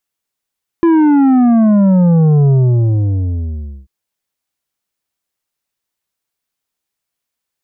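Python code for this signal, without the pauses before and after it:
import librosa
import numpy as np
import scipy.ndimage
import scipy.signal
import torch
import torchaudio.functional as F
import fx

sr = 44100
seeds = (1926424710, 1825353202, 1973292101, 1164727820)

y = fx.sub_drop(sr, level_db=-7.5, start_hz=340.0, length_s=3.04, drive_db=8.0, fade_s=1.38, end_hz=65.0)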